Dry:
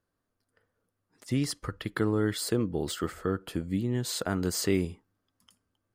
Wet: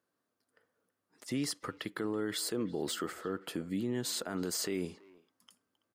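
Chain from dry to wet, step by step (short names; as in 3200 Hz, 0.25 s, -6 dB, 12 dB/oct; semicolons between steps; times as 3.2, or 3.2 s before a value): HPF 210 Hz 12 dB/oct; limiter -25.5 dBFS, peak gain reduction 10 dB; speakerphone echo 0.33 s, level -20 dB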